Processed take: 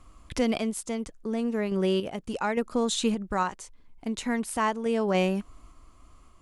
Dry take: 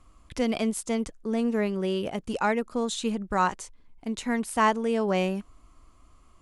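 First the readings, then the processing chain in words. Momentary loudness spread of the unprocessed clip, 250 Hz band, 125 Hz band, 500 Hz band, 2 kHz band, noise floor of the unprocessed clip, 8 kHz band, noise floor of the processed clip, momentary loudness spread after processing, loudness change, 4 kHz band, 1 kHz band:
11 LU, -0.5 dB, +1.0 dB, 0.0 dB, -2.5 dB, -57 dBFS, +1.0 dB, -55 dBFS, 9 LU, -1.0 dB, +1.5 dB, -3.0 dB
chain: in parallel at 0 dB: compressor, threshold -33 dBFS, peak gain reduction 15 dB; on the sum: random-step tremolo

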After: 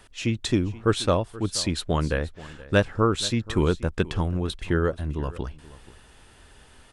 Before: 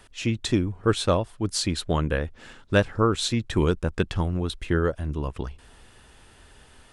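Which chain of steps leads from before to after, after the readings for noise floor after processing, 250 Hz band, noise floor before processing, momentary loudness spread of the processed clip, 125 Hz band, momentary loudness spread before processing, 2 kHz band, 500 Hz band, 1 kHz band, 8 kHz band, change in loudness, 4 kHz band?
-52 dBFS, 0.0 dB, -53 dBFS, 8 LU, 0.0 dB, 8 LU, 0.0 dB, 0.0 dB, 0.0 dB, 0.0 dB, 0.0 dB, 0.0 dB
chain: echo 0.479 s -19 dB

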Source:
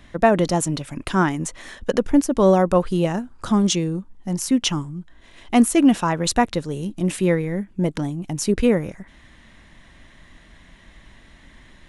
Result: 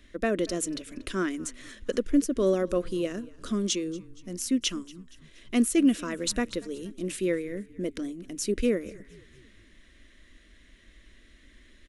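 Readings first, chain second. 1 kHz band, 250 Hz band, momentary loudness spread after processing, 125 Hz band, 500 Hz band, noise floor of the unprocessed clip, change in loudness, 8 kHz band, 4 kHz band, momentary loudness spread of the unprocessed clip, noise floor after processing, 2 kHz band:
-17.5 dB, -8.0 dB, 14 LU, -16.0 dB, -8.0 dB, -50 dBFS, -8.5 dB, -5.5 dB, -6.0 dB, 12 LU, -57 dBFS, -8.5 dB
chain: fixed phaser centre 350 Hz, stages 4; on a send: frequency-shifting echo 0.235 s, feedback 53%, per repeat -35 Hz, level -22 dB; on the sum: gain -5.5 dB

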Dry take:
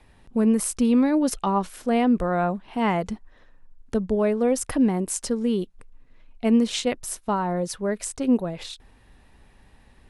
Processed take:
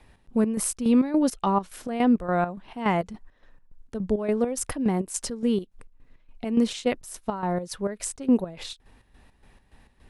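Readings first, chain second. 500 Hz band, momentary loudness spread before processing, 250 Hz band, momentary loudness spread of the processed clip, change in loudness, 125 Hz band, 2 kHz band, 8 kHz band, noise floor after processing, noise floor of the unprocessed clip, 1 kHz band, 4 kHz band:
-3.0 dB, 10 LU, -2.5 dB, 13 LU, -2.0 dB, -2.0 dB, -2.5 dB, -1.5 dB, -61 dBFS, -55 dBFS, -2.0 dB, -3.5 dB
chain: chopper 3.5 Hz, depth 65%, duty 55%

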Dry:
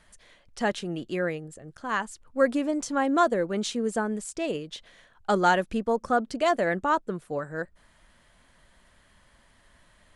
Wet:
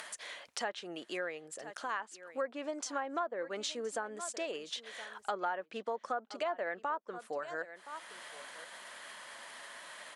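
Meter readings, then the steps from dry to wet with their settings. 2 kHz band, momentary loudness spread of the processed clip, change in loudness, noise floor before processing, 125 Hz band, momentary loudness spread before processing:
-9.0 dB, 11 LU, -12.5 dB, -61 dBFS, under -20 dB, 13 LU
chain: upward compressor, threshold -30 dBFS; HPF 570 Hz 12 dB/oct; on a send: echo 1.02 s -19.5 dB; on the sum: treble ducked by the level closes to 1700 Hz, closed at -21 dBFS; compressor 3:1, threshold -34 dBFS, peak gain reduction 12.5 dB; gain -1 dB

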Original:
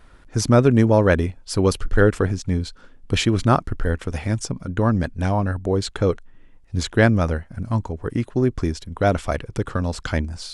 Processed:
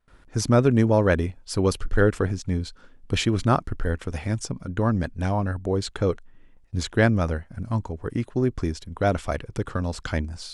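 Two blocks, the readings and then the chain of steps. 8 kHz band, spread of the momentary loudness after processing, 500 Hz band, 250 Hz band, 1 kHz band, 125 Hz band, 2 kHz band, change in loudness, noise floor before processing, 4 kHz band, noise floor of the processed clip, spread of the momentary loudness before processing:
-3.5 dB, 11 LU, -3.5 dB, -3.5 dB, -3.5 dB, -3.5 dB, -3.5 dB, -3.5 dB, -50 dBFS, -3.5 dB, -53 dBFS, 11 LU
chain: gate with hold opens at -40 dBFS; gain -3.5 dB

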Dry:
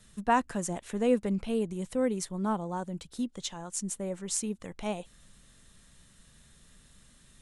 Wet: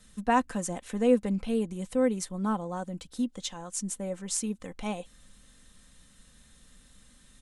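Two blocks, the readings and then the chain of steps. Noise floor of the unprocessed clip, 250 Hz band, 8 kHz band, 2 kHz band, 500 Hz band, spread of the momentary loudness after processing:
-60 dBFS, +2.0 dB, +0.5 dB, +1.0 dB, +2.0 dB, 11 LU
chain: comb 3.9 ms, depth 44%

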